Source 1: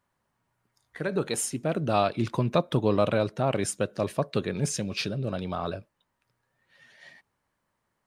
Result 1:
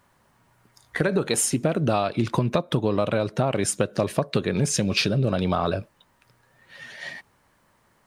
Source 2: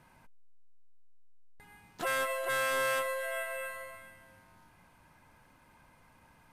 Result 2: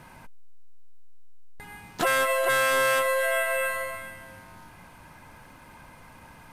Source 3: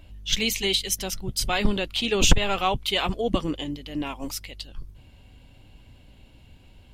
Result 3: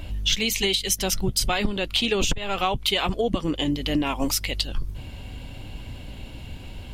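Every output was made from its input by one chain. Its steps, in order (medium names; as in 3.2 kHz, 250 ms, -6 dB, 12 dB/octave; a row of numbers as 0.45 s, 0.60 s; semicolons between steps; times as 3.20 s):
compression 16:1, threshold -33 dBFS; normalise loudness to -24 LUFS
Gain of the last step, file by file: +14.5 dB, +12.5 dB, +13.5 dB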